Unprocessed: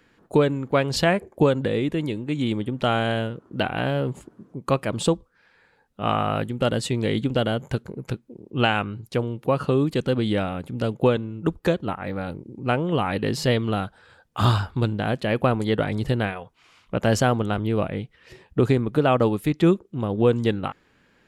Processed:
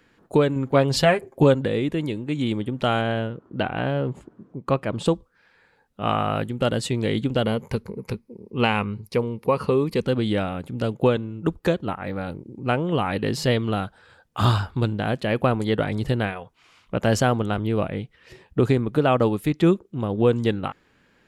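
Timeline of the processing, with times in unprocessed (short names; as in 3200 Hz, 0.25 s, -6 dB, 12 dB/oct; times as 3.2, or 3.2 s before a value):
0.55–1.55 comb 7.5 ms
3.01–5.06 LPF 2600 Hz 6 dB/oct
7.43–10.06 ripple EQ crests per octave 0.87, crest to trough 8 dB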